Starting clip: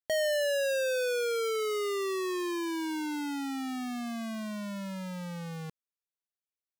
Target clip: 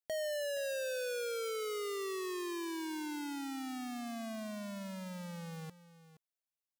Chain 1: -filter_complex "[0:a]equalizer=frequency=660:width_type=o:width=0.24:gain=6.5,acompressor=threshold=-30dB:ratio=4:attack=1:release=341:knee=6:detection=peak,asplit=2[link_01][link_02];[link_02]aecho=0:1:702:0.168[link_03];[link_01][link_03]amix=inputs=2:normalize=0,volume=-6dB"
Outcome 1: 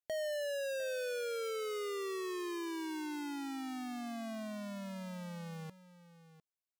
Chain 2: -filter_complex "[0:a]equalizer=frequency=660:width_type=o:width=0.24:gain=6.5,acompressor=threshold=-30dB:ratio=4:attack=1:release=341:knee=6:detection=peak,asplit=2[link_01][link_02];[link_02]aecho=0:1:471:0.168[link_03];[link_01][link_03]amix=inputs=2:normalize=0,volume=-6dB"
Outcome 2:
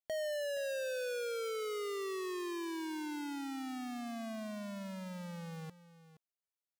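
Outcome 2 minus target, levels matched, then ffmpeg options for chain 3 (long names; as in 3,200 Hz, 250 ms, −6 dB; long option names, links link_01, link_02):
8,000 Hz band −3.0 dB
-filter_complex "[0:a]equalizer=frequency=660:width_type=o:width=0.24:gain=6.5,acompressor=threshold=-30dB:ratio=4:attack=1:release=341:knee=6:detection=peak,highshelf=frequency=4900:gain=5,asplit=2[link_01][link_02];[link_02]aecho=0:1:471:0.168[link_03];[link_01][link_03]amix=inputs=2:normalize=0,volume=-6dB"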